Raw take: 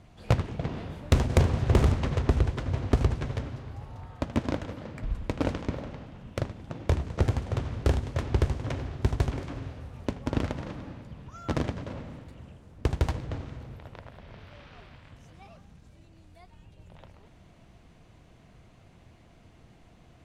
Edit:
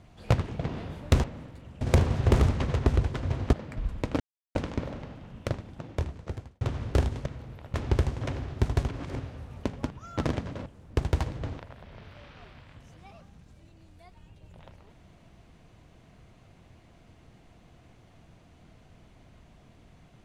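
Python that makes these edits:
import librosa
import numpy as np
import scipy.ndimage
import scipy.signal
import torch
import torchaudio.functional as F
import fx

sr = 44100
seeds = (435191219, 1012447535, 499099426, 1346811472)

y = fx.edit(x, sr, fx.cut(start_s=2.96, length_s=1.83),
    fx.insert_silence(at_s=5.46, length_s=0.35),
    fx.fade_out_span(start_s=6.44, length_s=1.08),
    fx.reverse_span(start_s=9.34, length_s=0.28),
    fx.cut(start_s=10.33, length_s=0.88),
    fx.move(start_s=11.97, length_s=0.57, to_s=1.24),
    fx.move(start_s=13.47, length_s=0.48, to_s=8.17), tone=tone)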